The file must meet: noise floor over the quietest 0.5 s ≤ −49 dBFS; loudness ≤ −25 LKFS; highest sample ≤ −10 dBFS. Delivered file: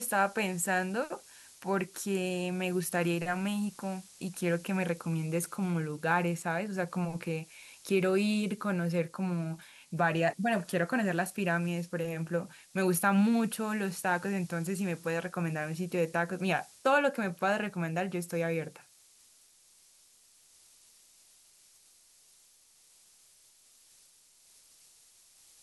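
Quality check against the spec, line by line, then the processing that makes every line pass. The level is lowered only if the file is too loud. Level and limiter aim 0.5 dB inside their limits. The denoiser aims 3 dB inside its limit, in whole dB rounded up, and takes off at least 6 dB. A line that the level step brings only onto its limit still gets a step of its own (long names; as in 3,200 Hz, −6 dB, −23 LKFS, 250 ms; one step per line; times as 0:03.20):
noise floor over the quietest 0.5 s −63 dBFS: in spec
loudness −31.5 LKFS: in spec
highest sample −14.5 dBFS: in spec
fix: no processing needed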